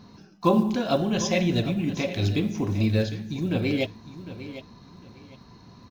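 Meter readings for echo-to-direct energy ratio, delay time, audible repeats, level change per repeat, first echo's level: -13.0 dB, 0.754 s, 2, -12.0 dB, -13.5 dB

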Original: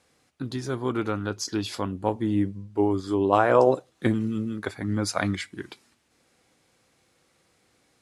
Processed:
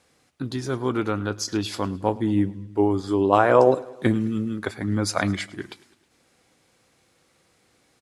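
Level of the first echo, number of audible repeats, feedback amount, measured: -21.5 dB, 3, 58%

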